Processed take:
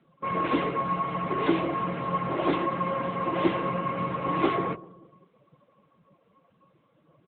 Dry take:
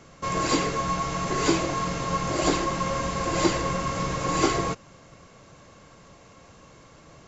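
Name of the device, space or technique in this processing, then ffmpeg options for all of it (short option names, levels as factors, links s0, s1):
mobile call with aggressive noise cancelling: -filter_complex "[0:a]highpass=140,asplit=2[s0][s1];[s1]adelay=192,lowpass=f=2600:p=1,volume=0.112,asplit=2[s2][s3];[s3]adelay=192,lowpass=f=2600:p=1,volume=0.52,asplit=2[s4][s5];[s5]adelay=192,lowpass=f=2600:p=1,volume=0.52,asplit=2[s6][s7];[s7]adelay=192,lowpass=f=2600:p=1,volume=0.52[s8];[s0][s2][s4][s6][s8]amix=inputs=5:normalize=0,afftdn=nr=16:nf=-40" -ar 8000 -c:a libopencore_amrnb -b:a 10200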